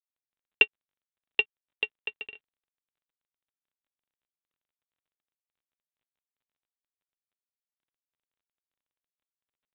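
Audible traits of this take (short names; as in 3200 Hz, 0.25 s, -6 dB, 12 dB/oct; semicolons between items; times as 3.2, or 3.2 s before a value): a buzz of ramps at a fixed pitch in blocks of 16 samples; G.726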